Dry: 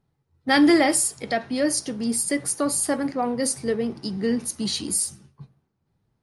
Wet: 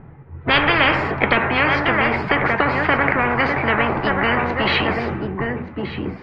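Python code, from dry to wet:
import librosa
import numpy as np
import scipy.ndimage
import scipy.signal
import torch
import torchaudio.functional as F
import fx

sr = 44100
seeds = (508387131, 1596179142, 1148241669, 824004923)

y = scipy.signal.sosfilt(scipy.signal.butter(6, 2300.0, 'lowpass', fs=sr, output='sos'), x)
y = y + 10.0 ** (-16.0 / 20.0) * np.pad(y, (int(1177 * sr / 1000.0), 0))[:len(y)]
y = fx.spectral_comp(y, sr, ratio=10.0)
y = F.gain(torch.from_numpy(y), 7.0).numpy()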